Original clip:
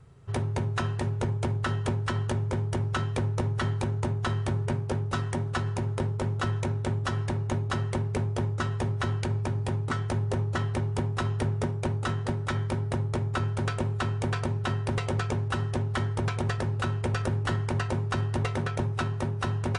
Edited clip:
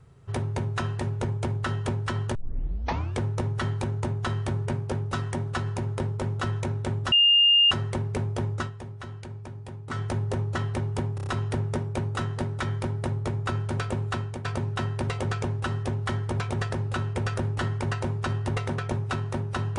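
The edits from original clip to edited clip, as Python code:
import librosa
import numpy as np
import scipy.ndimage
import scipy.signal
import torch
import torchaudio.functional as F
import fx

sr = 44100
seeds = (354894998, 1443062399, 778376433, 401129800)

y = fx.edit(x, sr, fx.tape_start(start_s=2.35, length_s=0.86),
    fx.bleep(start_s=7.12, length_s=0.59, hz=2820.0, db=-15.0),
    fx.fade_down_up(start_s=8.6, length_s=1.38, db=-10.5, fade_s=0.12),
    fx.stutter(start_s=11.15, slice_s=0.03, count=5),
    fx.fade_out_to(start_s=14.0, length_s=0.33, floor_db=-10.5), tone=tone)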